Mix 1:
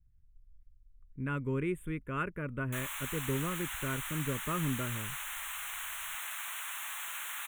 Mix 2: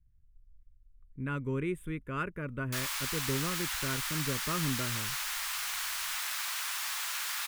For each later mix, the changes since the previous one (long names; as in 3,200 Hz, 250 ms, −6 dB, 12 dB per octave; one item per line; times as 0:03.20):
background +3.5 dB
master: remove Butterworth band-reject 4,900 Hz, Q 1.4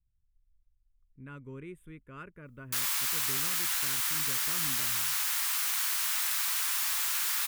speech −11.0 dB
background: add high-shelf EQ 7,700 Hz +10 dB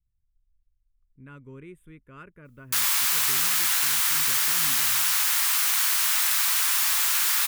background +7.5 dB